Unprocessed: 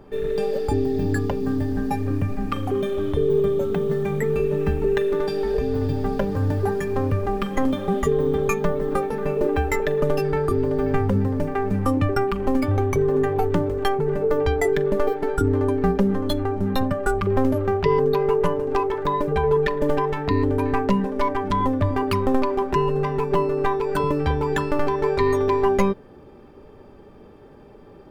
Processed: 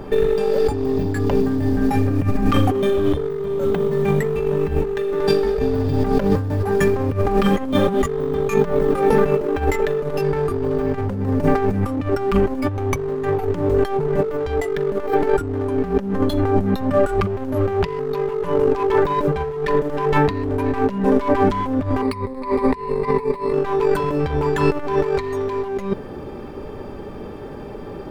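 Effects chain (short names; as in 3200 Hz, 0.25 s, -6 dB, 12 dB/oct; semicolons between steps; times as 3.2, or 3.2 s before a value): in parallel at -9 dB: wavefolder -21.5 dBFS; 22.02–23.53 on the sum: ripple EQ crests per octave 0.94, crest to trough 15 dB; negative-ratio compressor -24 dBFS, ratio -0.5; gain +6 dB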